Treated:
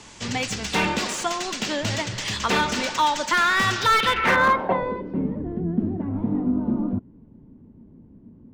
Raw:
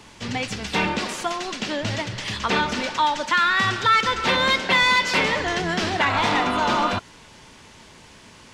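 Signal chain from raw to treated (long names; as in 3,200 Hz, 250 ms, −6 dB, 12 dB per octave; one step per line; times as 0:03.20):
low-pass filter sweep 7,600 Hz → 250 Hz, 0:03.70–0:05.18
slew-rate limiting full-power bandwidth 270 Hz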